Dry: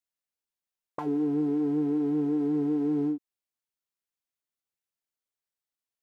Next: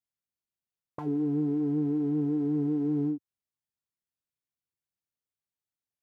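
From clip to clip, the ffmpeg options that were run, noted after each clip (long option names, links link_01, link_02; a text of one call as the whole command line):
ffmpeg -i in.wav -af "equalizer=frequency=110:width=0.55:gain=13,volume=-6.5dB" out.wav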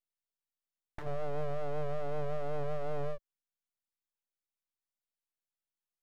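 ffmpeg -i in.wav -af "aeval=exprs='abs(val(0))':channel_layout=same,volume=-3.5dB" out.wav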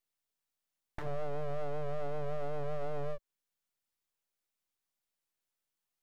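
ffmpeg -i in.wav -af "alimiter=level_in=8dB:limit=-24dB:level=0:latency=1:release=365,volume=-8dB,volume=5dB" out.wav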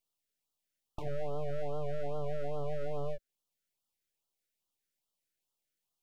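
ffmpeg -i in.wav -af "afftfilt=real='re*(1-between(b*sr/1024,890*pow(2000/890,0.5+0.5*sin(2*PI*2.4*pts/sr))/1.41,890*pow(2000/890,0.5+0.5*sin(2*PI*2.4*pts/sr))*1.41))':imag='im*(1-between(b*sr/1024,890*pow(2000/890,0.5+0.5*sin(2*PI*2.4*pts/sr))/1.41,890*pow(2000/890,0.5+0.5*sin(2*PI*2.4*pts/sr))*1.41))':win_size=1024:overlap=0.75,volume=1dB" out.wav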